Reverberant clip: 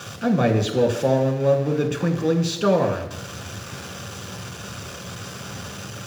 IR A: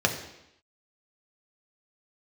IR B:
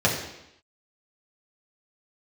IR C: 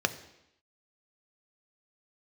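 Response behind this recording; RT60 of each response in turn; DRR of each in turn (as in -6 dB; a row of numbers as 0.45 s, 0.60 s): A; 0.85 s, 0.85 s, 0.85 s; 2.0 dB, -4.5 dB, 9.0 dB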